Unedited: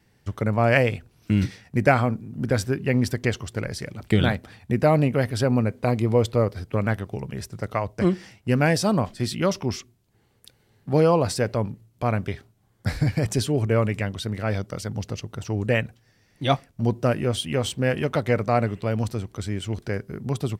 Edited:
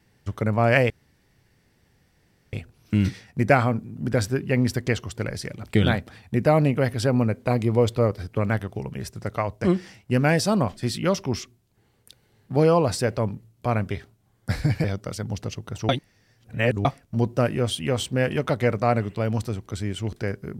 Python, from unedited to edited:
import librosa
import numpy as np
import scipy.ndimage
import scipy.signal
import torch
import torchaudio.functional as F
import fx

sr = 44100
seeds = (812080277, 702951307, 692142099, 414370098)

y = fx.edit(x, sr, fx.insert_room_tone(at_s=0.9, length_s=1.63),
    fx.cut(start_s=13.21, length_s=1.29),
    fx.reverse_span(start_s=15.55, length_s=0.96), tone=tone)